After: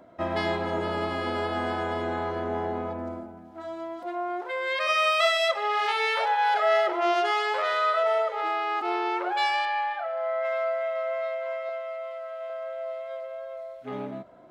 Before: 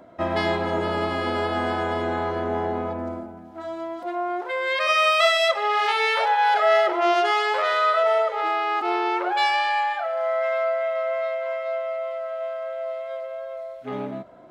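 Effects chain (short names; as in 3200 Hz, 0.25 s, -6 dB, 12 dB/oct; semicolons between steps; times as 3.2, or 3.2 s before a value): 9.65–10.45 air absorption 140 m; 11.69–12.5 HPF 600 Hz 6 dB/oct; gain -4 dB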